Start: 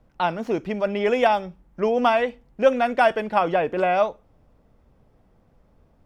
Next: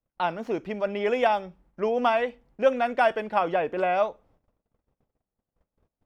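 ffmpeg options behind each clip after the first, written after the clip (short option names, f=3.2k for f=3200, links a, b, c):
-af "agate=range=-25dB:threshold=-54dB:ratio=16:detection=peak,bass=f=250:g=-4,treble=f=4k:g=-3,volume=-3.5dB"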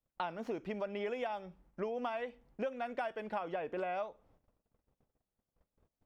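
-af "acompressor=threshold=-31dB:ratio=10,volume=-3.5dB"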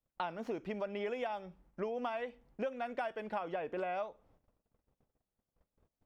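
-af anull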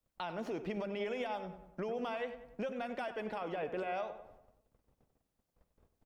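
-filter_complex "[0:a]acrossover=split=140|2800[a][b][c];[b]alimiter=level_in=11dB:limit=-24dB:level=0:latency=1:release=99,volume=-11dB[d];[a][d][c]amix=inputs=3:normalize=0,asplit=2[e][f];[f]adelay=96,lowpass=f=2.5k:p=1,volume=-10.5dB,asplit=2[g][h];[h]adelay=96,lowpass=f=2.5k:p=1,volume=0.51,asplit=2[i][j];[j]adelay=96,lowpass=f=2.5k:p=1,volume=0.51,asplit=2[k][l];[l]adelay=96,lowpass=f=2.5k:p=1,volume=0.51,asplit=2[m][n];[n]adelay=96,lowpass=f=2.5k:p=1,volume=0.51,asplit=2[o][p];[p]adelay=96,lowpass=f=2.5k:p=1,volume=0.51[q];[e][g][i][k][m][o][q]amix=inputs=7:normalize=0,volume=4dB"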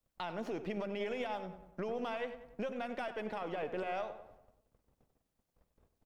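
-af "aeval=exprs='if(lt(val(0),0),0.708*val(0),val(0))':c=same,volume=1dB"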